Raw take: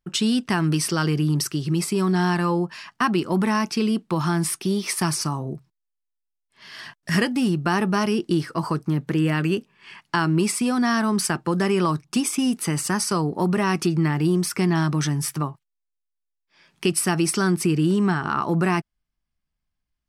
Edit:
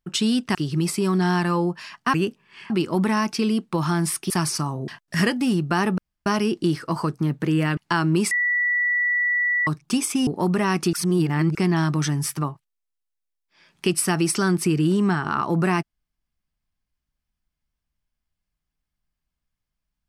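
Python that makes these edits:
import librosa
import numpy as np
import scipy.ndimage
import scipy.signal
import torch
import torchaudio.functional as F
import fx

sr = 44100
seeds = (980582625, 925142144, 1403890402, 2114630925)

y = fx.edit(x, sr, fx.cut(start_s=0.55, length_s=0.94),
    fx.cut(start_s=4.68, length_s=0.28),
    fx.cut(start_s=5.54, length_s=1.29),
    fx.insert_room_tone(at_s=7.93, length_s=0.28),
    fx.move(start_s=9.44, length_s=0.56, to_s=3.08),
    fx.bleep(start_s=10.54, length_s=1.36, hz=1950.0, db=-18.5),
    fx.cut(start_s=12.5, length_s=0.76),
    fx.reverse_span(start_s=13.92, length_s=0.62), tone=tone)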